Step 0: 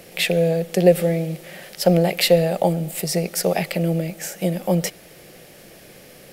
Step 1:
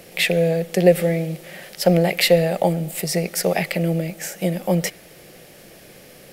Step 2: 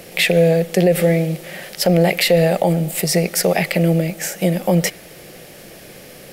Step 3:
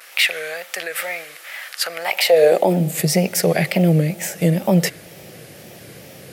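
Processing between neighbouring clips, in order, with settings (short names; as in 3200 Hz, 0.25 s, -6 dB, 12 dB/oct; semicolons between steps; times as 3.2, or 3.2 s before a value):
dynamic EQ 2000 Hz, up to +5 dB, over -42 dBFS, Q 2.4
limiter -11 dBFS, peak gain reduction 9.5 dB; gain +5.5 dB
wow and flutter 120 cents; high-pass sweep 1300 Hz -> 98 Hz, 2.02–3.13; gain -1.5 dB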